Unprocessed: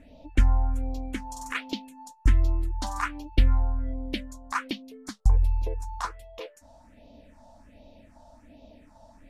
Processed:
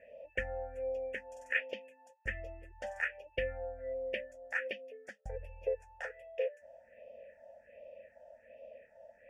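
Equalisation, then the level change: vowel filter e; static phaser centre 1.1 kHz, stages 6; +11.5 dB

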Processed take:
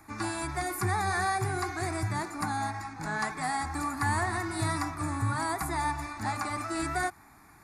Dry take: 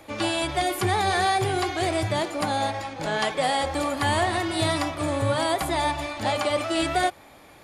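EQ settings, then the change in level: static phaser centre 1.3 kHz, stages 4; -2.0 dB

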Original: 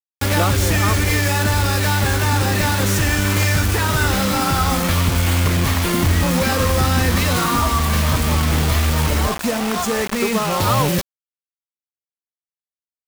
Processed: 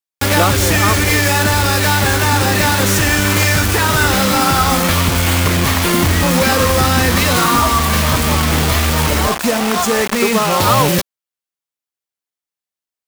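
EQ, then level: bass shelf 150 Hz -7 dB; +6.0 dB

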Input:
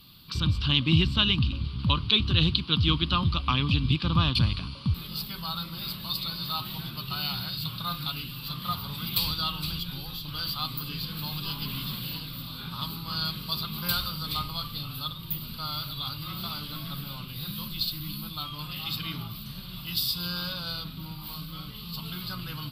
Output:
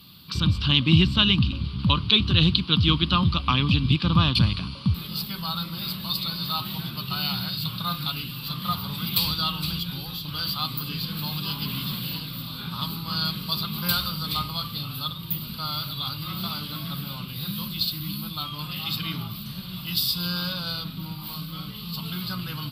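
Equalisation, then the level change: high-pass 64 Hz; peaking EQ 190 Hz +5 dB 0.25 oct; +3.5 dB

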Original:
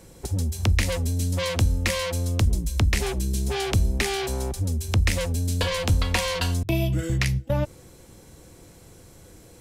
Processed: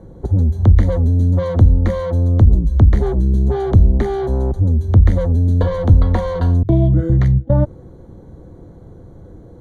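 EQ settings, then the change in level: boxcar filter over 17 samples; tilt shelf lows +5 dB, about 820 Hz; +6.5 dB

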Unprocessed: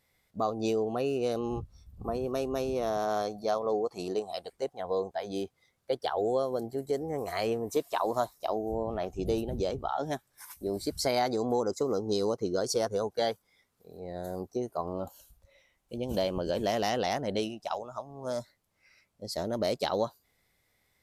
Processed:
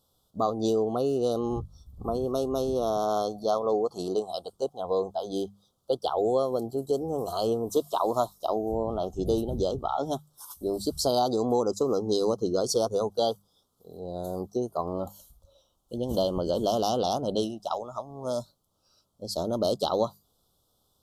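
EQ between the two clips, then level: Chebyshev band-stop 1.3–3.2 kHz, order 3; hum notches 50/100/150/200 Hz; +4.0 dB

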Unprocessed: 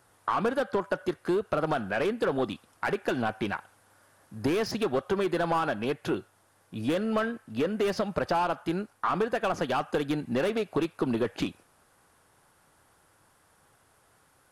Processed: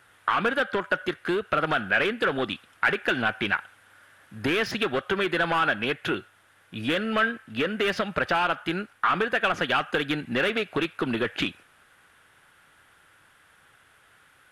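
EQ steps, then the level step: high-order bell 2.2 kHz +11 dB; 0.0 dB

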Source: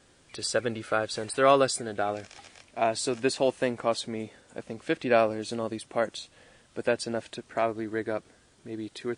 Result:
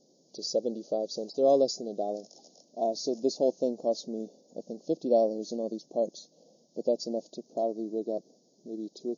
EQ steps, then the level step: brick-wall FIR band-pass 150–7000 Hz; Chebyshev band-stop 640–4900 Hz, order 3; 0.0 dB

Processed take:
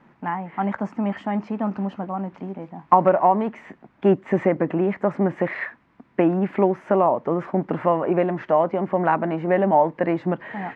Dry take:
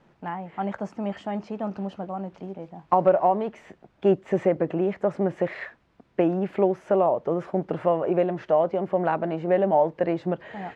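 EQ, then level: ten-band graphic EQ 125 Hz +5 dB, 250 Hz +12 dB, 1 kHz +10 dB, 2 kHz +10 dB; -4.5 dB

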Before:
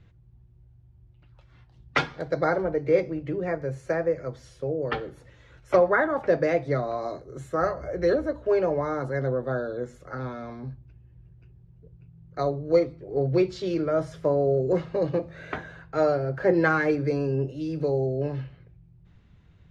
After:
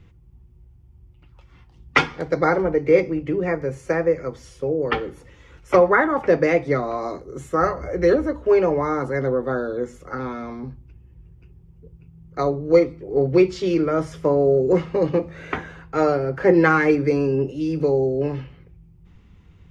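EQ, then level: graphic EQ with 31 bands 125 Hz -10 dB, 630 Hz -9 dB, 1.6 kHz -7 dB, 4 kHz -7 dB; dynamic bell 1.9 kHz, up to +3 dB, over -47 dBFS, Q 1.2; +7.5 dB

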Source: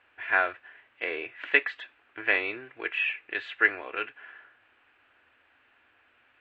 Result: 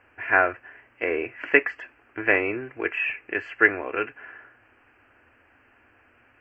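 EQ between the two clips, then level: dynamic bell 3.9 kHz, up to -5 dB, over -42 dBFS, Q 1.7; Butterworth band-stop 3.7 kHz, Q 1.8; bass shelf 470 Hz +11.5 dB; +3.5 dB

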